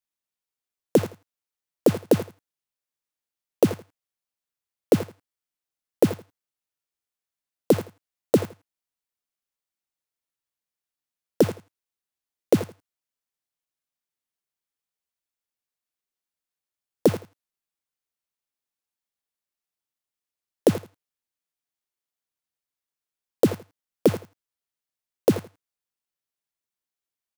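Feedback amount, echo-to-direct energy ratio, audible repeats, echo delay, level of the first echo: 18%, −15.5 dB, 2, 82 ms, −15.5 dB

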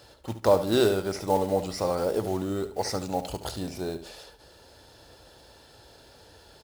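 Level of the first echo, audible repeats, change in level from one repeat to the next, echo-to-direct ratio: −12.0 dB, 2, −10.0 dB, −11.5 dB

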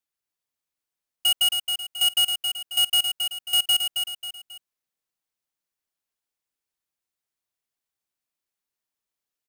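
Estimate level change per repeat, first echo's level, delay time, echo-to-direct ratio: −8.0 dB, −6.0 dB, 270 ms, −5.5 dB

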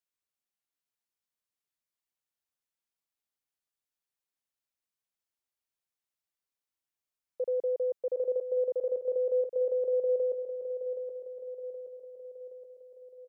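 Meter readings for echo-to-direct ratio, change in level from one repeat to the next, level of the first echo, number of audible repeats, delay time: −7.0 dB, −5.0 dB, −8.5 dB, 6, 772 ms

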